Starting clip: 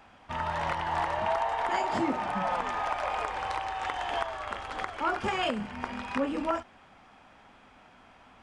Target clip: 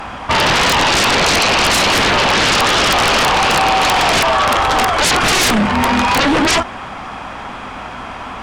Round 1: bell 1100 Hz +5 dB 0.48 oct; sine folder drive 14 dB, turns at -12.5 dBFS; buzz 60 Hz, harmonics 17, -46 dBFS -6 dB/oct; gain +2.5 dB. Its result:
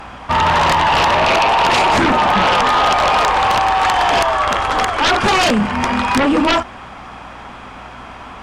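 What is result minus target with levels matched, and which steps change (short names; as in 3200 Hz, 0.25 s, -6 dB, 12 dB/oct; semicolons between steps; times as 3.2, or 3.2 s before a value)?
sine folder: distortion -12 dB
change: sine folder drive 20 dB, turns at -12.5 dBFS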